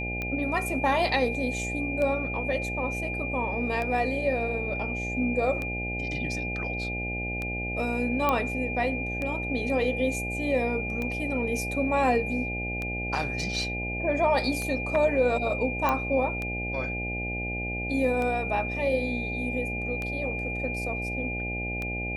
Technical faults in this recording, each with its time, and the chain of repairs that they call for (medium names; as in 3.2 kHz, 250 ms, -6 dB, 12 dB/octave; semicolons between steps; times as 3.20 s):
buzz 60 Hz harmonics 14 -34 dBFS
tick 33 1/3 rpm -19 dBFS
whine 2.4 kHz -32 dBFS
8.29 s: pop -11 dBFS
15.89 s: pop -12 dBFS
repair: de-click; de-hum 60 Hz, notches 14; band-stop 2.4 kHz, Q 30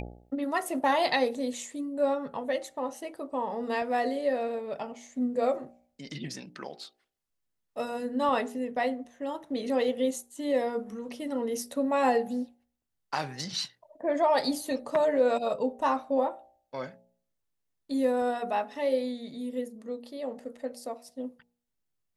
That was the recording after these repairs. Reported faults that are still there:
nothing left